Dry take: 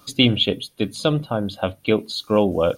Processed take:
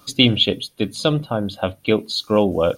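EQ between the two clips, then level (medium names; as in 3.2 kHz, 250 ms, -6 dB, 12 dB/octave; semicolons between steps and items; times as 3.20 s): dynamic bell 5.2 kHz, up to +5 dB, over -35 dBFS, Q 1.3; +1.0 dB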